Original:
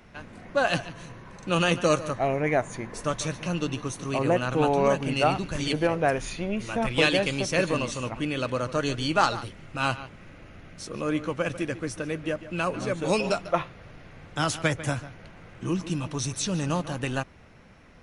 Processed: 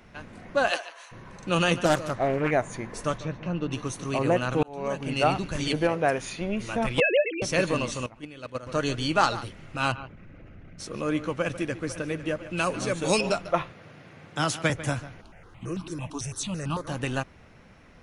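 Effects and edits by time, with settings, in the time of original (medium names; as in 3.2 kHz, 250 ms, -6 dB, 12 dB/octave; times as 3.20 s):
0.69–1.11 s: high-pass 370 Hz -> 800 Hz 24 dB/octave
1.85–2.51 s: loudspeaker Doppler distortion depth 0.48 ms
3.18–3.71 s: tape spacing loss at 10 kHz 30 dB
4.63–5.25 s: fade in
5.89–6.41 s: high-pass 130 Hz 6 dB/octave
7.00–7.42 s: formants replaced by sine waves
8.06–8.67 s: gate -26 dBFS, range -15 dB
9.92–10.80 s: resonances exaggerated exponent 1.5
11.37–11.87 s: echo throw 500 ms, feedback 60%, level -14.5 dB
12.57–13.21 s: treble shelf 3.8 kHz +9.5 dB
13.73–14.70 s: high-pass 110 Hz 24 dB/octave
15.21–16.88 s: stepped phaser 9 Hz 520–1900 Hz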